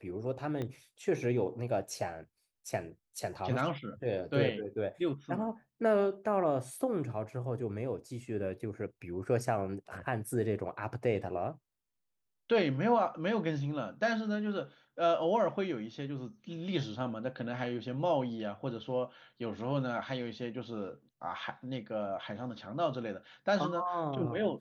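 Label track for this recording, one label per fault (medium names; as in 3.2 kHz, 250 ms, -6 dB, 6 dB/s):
0.620000	0.620000	pop -25 dBFS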